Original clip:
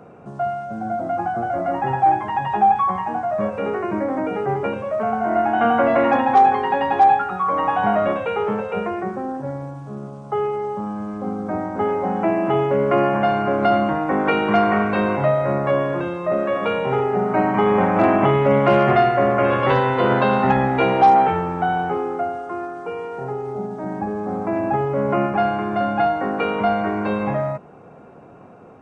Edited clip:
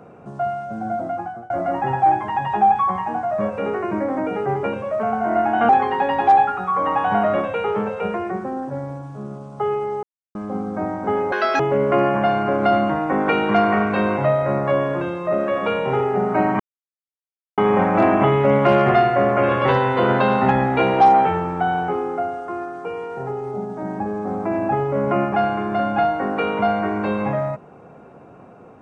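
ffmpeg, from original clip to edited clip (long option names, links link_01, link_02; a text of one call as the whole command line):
ffmpeg -i in.wav -filter_complex "[0:a]asplit=8[link_01][link_02][link_03][link_04][link_05][link_06][link_07][link_08];[link_01]atrim=end=1.5,asetpts=PTS-STARTPTS,afade=type=out:start_time=0.98:duration=0.52:silence=0.0794328[link_09];[link_02]atrim=start=1.5:end=5.692,asetpts=PTS-STARTPTS,afade=type=in:duration=0.004:curve=hsin:silence=0.0794328[link_10];[link_03]atrim=start=6.408:end=10.75,asetpts=PTS-STARTPTS,afade=type=out:start_time=4.338:duration=0.004:curve=hsin[link_11];[link_04]atrim=start=10.75:end=11.07,asetpts=PTS-STARTPTS,volume=0[link_12];[link_05]atrim=start=11.07:end=12.044,asetpts=PTS-STARTPTS,afade=type=in:duration=0.004:curve=hsin[link_13];[link_06]atrim=start=12.04:end=12.59,asetpts=PTS-STARTPTS,asetrate=87759,aresample=44100,atrim=end_sample=12188,asetpts=PTS-STARTPTS[link_14];[link_07]atrim=start=12.586:end=17.59,asetpts=PTS-STARTPTS,afade=type=out:start_time=5:duration=0.004:curve=hsin,apad=pad_dur=0.98[link_15];[link_08]atrim=start=17.59,asetpts=PTS-STARTPTS,afade=type=in:duration=0.004:curve=hsin[link_16];[link_09][link_10]concat=n=2:v=0:a=1[link_17];[link_11][link_12][link_13]concat=n=3:v=0:a=1[link_18];[link_17][link_18]acrossfade=duration=0.004:curve1=hsin:curve2=hsin[link_19];[link_19][link_14]acrossfade=duration=0.004:curve1=hsin:curve2=hsin[link_20];[link_15][link_16]concat=n=2:v=0:a=1[link_21];[link_20][link_21]acrossfade=duration=0.004:curve1=hsin:curve2=hsin" out.wav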